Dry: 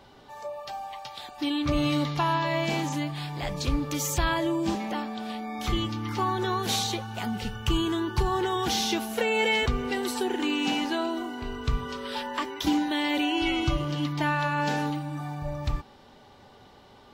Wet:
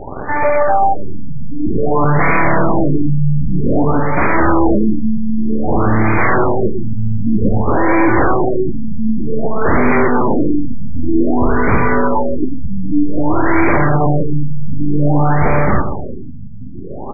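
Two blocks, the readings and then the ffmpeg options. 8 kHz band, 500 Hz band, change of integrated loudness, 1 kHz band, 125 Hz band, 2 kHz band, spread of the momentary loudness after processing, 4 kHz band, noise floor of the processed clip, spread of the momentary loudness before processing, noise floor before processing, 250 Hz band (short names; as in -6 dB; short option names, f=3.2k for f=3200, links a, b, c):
under -40 dB, +14.5 dB, +12.5 dB, +13.0 dB, +15.0 dB, +11.5 dB, 11 LU, under -40 dB, -24 dBFS, 9 LU, -53 dBFS, +13.5 dB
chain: -filter_complex "[0:a]highshelf=f=3.8k:g=-3.5,asplit=2[a][b];[b]alimiter=limit=-22.5dB:level=0:latency=1:release=379,volume=-2.5dB[c];[a][c]amix=inputs=2:normalize=0,aeval=exprs='0.266*sin(PI/2*5.01*val(0)/0.266)':c=same,aeval=exprs='0.266*(cos(1*acos(clip(val(0)/0.266,-1,1)))-cos(1*PI/2))+0.106*(cos(6*acos(clip(val(0)/0.266,-1,1)))-cos(6*PI/2))':c=same,asplit=2[d][e];[e]adelay=121,lowpass=f=2k:p=1,volume=-8dB,asplit=2[f][g];[g]adelay=121,lowpass=f=2k:p=1,volume=0.53,asplit=2[h][i];[i]adelay=121,lowpass=f=2k:p=1,volume=0.53,asplit=2[j][k];[k]adelay=121,lowpass=f=2k:p=1,volume=0.53,asplit=2[l][m];[m]adelay=121,lowpass=f=2k:p=1,volume=0.53,asplit=2[n][o];[o]adelay=121,lowpass=f=2k:p=1,volume=0.53[p];[d][f][h][j][l][n][p]amix=inputs=7:normalize=0,afftfilt=real='re*lt(b*sr/1024,240*pow(2500/240,0.5+0.5*sin(2*PI*0.53*pts/sr)))':imag='im*lt(b*sr/1024,240*pow(2500/240,0.5+0.5*sin(2*PI*0.53*pts/sr)))':win_size=1024:overlap=0.75,volume=1.5dB"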